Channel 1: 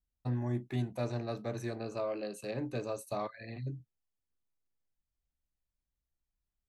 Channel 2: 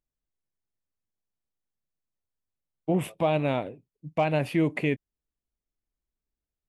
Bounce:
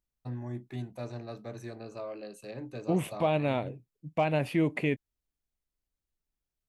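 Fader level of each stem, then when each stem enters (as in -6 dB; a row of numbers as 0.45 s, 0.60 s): -4.0 dB, -2.5 dB; 0.00 s, 0.00 s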